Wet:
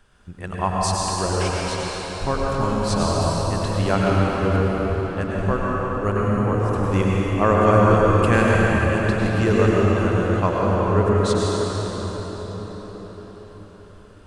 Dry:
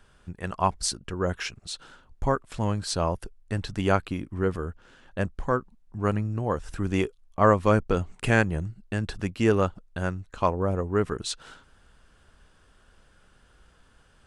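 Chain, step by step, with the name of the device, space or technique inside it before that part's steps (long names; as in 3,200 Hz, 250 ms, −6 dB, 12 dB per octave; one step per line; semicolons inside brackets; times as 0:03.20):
cathedral (convolution reverb RT60 5.9 s, pre-delay 91 ms, DRR −5.5 dB)
0:03.21–0:03.95: high-shelf EQ 8,600 Hz +5.5 dB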